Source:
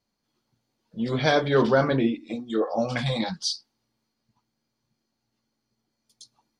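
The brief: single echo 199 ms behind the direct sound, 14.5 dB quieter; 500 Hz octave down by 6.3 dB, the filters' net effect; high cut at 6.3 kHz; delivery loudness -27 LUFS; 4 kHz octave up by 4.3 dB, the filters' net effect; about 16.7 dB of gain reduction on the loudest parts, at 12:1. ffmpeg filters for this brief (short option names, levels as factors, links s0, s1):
-af "lowpass=6300,equalizer=f=500:t=o:g=-8,equalizer=f=4000:t=o:g=6,acompressor=threshold=0.0158:ratio=12,aecho=1:1:199:0.188,volume=4.73"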